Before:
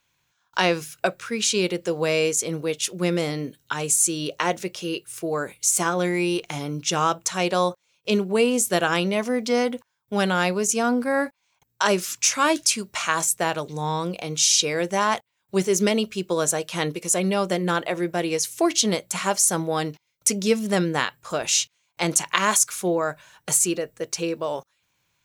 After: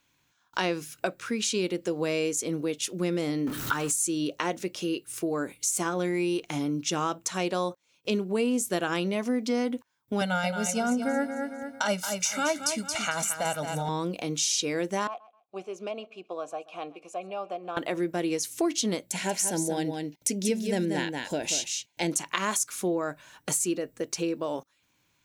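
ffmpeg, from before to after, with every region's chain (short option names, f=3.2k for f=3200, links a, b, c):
-filter_complex "[0:a]asettb=1/sr,asplit=3[a][b][c];[a]atrim=end=3.474[d];[b]atrim=start=3.47:end=3.92,asetpts=PTS-STARTPTS,afade=t=in:d=0.004:c=qsin,afade=t=out:st=0.446:d=0.004:c=qsin,aeval=exprs='val(0)+0.5*0.0266*sgn(val(0))':c=same,equalizer=f=1.3k:t=o:w=0.72:g=10,acompressor=mode=upward:threshold=-27dB:ratio=2.5:attack=3.2:release=140:knee=2.83:detection=peak[e];[c]atrim=start=3.916[f];[d][e]acrossfade=d=0.004:c1=hsin:c2=qsin[g];[g][f]acrossfade=d=0.004:c1=qsin:c2=hsin,asettb=1/sr,asplit=3[h][i][j];[h]atrim=end=10.214[k];[i]atrim=start=10.21:end=13.89,asetpts=PTS-STARTPTS,afade=t=in:d=0.004:c=qsin,afade=t=out:st=3.676:d=0.004:c=qsin,aecho=1:1:1.4:0.98,atrim=end_sample=162288,tremolo=f=7:d=0.41,aecho=1:1:224|448|672|896:0.355|0.124|0.0435|0.0152,atrim=end_sample=162288[l];[j]atrim=start=13.886[m];[k][l]acrossfade=d=0.004:c1=hsin:c2=qsin[n];[n][m]acrossfade=d=0.004:c1=qsin:c2=hsin,asettb=1/sr,asplit=3[o][p][q];[o]atrim=end=15.074[r];[p]atrim=start=15.07:end=17.77,asetpts=PTS-STARTPTS,afade=t=in:d=0.004:c=qsin,afade=t=out:st=2.696:d=0.004:c=qsin,asplit=3[s][t][u];[s]bandpass=f=730:t=q:w=8,volume=0dB[v];[t]bandpass=f=1.09k:t=q:w=8,volume=-6dB[w];[u]bandpass=f=2.44k:t=q:w=8,volume=-9dB[x];[v][w][x]amix=inputs=3:normalize=0,aecho=1:1:130|260:0.0794|0.0183,atrim=end_sample=119070[y];[q]atrim=start=17.766[z];[r][y]acrossfade=d=0.004:c1=hsin:c2=qsin[aa];[aa][z]acrossfade=d=0.004:c1=qsin:c2=hsin,asettb=1/sr,asplit=3[ab][ac][ad];[ab]atrim=end=19.074[ae];[ac]atrim=start=19.07:end=22.12,asetpts=PTS-STARTPTS,afade=t=in:d=0.004:c=qsin,afade=t=out:st=3.046:d=0.004:c=qsin,asuperstop=centerf=1200:order=4:qfactor=2.3,aecho=1:1:185:0.447,atrim=end_sample=134505[af];[ad]atrim=start=22.116[ag];[ae][af]acrossfade=d=0.004:c1=hsin:c2=qsin[ah];[ah][ag]acrossfade=d=0.004:c1=qsin:c2=hsin,equalizer=f=280:w=2.5:g=10.5,acompressor=threshold=-31dB:ratio=2"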